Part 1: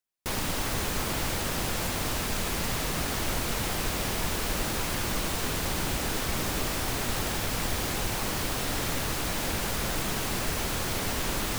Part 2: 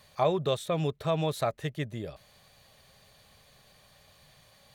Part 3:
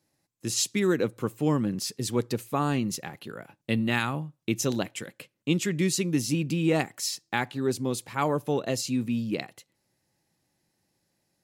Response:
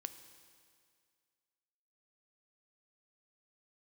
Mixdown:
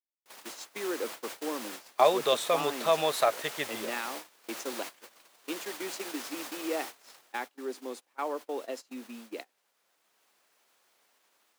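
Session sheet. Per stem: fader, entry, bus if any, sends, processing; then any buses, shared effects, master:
7.25 s -6 dB -> 7.52 s -19 dB, 0.00 s, send -15.5 dB, peak limiter -20.5 dBFS, peak gain reduction 4.5 dB; auto duck -8 dB, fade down 0.60 s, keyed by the third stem
+2.0 dB, 1.80 s, no send, none
-10.5 dB, 0.00 s, send -17.5 dB, steep high-pass 230 Hz 48 dB/octave; tilt EQ -3 dB/octave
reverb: on, RT60 2.1 s, pre-delay 3 ms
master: gate -38 dBFS, range -22 dB; level rider gain up to 4 dB; high-pass 550 Hz 12 dB/octave

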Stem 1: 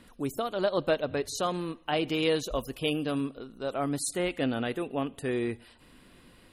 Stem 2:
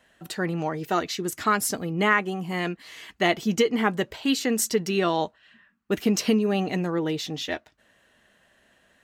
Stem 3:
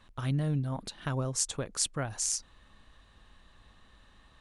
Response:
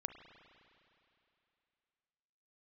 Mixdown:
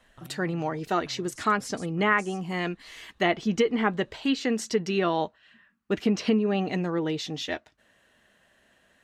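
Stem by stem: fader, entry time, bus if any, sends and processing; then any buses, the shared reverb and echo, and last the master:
mute
-1.5 dB, 0.00 s, no send, low-pass that closes with the level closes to 2.7 kHz, closed at -17.5 dBFS
-8.0 dB, 0.00 s, no send, compression, threshold -40 dBFS, peak gain reduction 14 dB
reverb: none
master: none

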